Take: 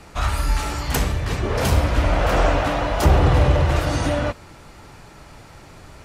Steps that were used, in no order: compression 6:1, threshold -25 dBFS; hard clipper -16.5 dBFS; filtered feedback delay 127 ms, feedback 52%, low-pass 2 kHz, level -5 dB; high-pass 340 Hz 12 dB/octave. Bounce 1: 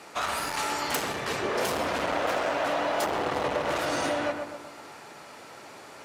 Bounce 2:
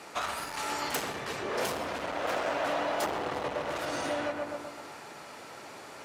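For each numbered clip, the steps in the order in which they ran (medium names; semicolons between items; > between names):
hard clipper > high-pass > compression > filtered feedback delay; hard clipper > filtered feedback delay > compression > high-pass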